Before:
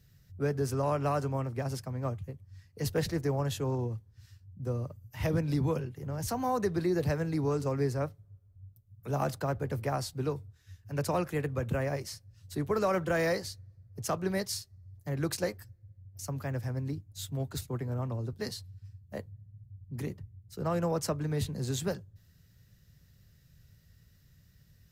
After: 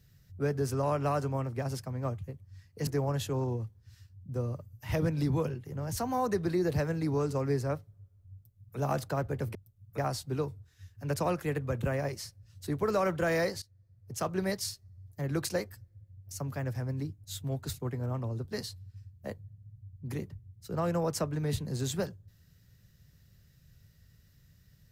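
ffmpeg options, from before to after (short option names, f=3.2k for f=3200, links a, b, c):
-filter_complex "[0:a]asplit=5[a][b][c][d][e];[a]atrim=end=2.872[f];[b]atrim=start=3.178:end=9.862[g];[c]atrim=start=8.648:end=9.082[h];[d]atrim=start=9.858:end=13.5,asetpts=PTS-STARTPTS,afade=t=out:st=3.638:d=0.004:c=hsin:silence=0.112202[i];[e]atrim=start=13.5,asetpts=PTS-STARTPTS,afade=t=in:d=0.7:silence=0.112202[j];[f][g]acrossfade=d=0.004:c1=hsin:c2=hsin[k];[k][h]acrossfade=d=0.004:c1=hsin:c2=hsin[l];[i][j]concat=n=2:v=0:a=1[m];[l][m]acrossfade=d=0.004:c1=hsin:c2=hsin"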